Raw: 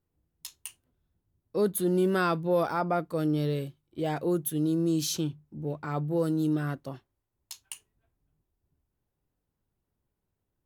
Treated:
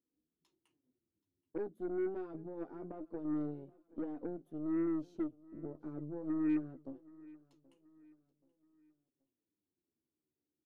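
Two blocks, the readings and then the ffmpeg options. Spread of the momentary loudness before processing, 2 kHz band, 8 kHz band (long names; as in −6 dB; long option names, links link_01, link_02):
19 LU, −19.5 dB, below −40 dB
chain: -af "acompressor=threshold=-37dB:ratio=2.5,bandpass=frequency=310:width_type=q:width=3.8:csg=0,flanger=delay=4:depth=9.5:regen=21:speed=0.24:shape=sinusoidal,aeval=exprs='0.0251*(cos(1*acos(clip(val(0)/0.0251,-1,1)))-cos(1*PI/2))+0.000501*(cos(7*acos(clip(val(0)/0.0251,-1,1)))-cos(7*PI/2))+0.00141*(cos(8*acos(clip(val(0)/0.0251,-1,1)))-cos(8*PI/2))':channel_layout=same,aecho=1:1:778|1556|2334:0.0794|0.0318|0.0127,volume=6dB"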